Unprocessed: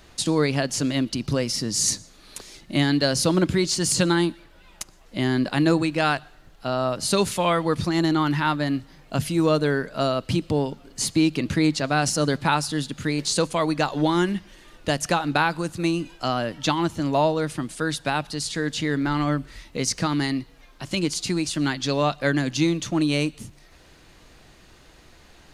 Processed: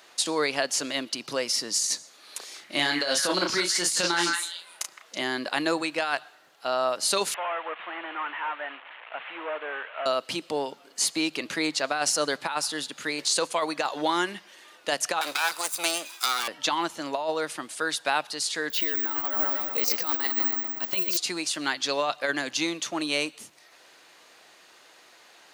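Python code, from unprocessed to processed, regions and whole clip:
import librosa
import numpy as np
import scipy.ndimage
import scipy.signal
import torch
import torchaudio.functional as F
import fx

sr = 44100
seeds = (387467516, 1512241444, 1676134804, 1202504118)

y = fx.chain(x, sr, fx.doubler(ms=34.0, db=-5.0),
    fx.echo_stepped(ms=163, hz=1600.0, octaves=1.4, feedback_pct=70, wet_db=-2.5), at=(2.38, 5.22))
y = fx.chain(y, sr, fx.delta_mod(bps=16000, step_db=-34.0),
    fx.highpass(hz=760.0, slope=12), at=(7.34, 10.06))
y = fx.chain(y, sr, fx.lower_of_two(delay_ms=0.81),
    fx.riaa(side='recording'),
    fx.band_squash(depth_pct=40), at=(15.21, 16.48))
y = fx.chain(y, sr, fx.lowpass(hz=5300.0, slope=12),
    fx.echo_filtered(ms=121, feedback_pct=67, hz=3400.0, wet_db=-5.5),
    fx.resample_bad(factor=2, down='none', up='zero_stuff'), at=(18.7, 21.17))
y = scipy.signal.sosfilt(scipy.signal.butter(2, 560.0, 'highpass', fs=sr, output='sos'), y)
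y = fx.over_compress(y, sr, threshold_db=-24.0, ratio=-0.5)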